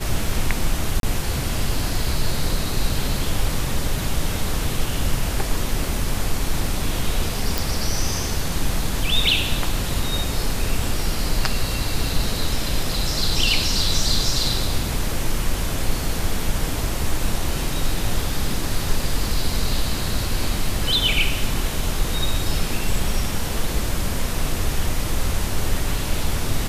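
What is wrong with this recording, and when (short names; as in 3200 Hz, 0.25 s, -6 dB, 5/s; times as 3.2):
1–1.03 gap 32 ms
7.58 pop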